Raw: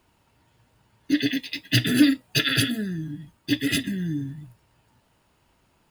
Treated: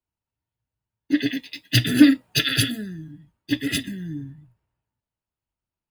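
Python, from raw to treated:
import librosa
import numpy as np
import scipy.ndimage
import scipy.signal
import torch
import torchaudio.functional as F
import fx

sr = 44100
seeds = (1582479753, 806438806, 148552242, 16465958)

y = fx.band_widen(x, sr, depth_pct=70)
y = y * 10.0 ** (-1.0 / 20.0)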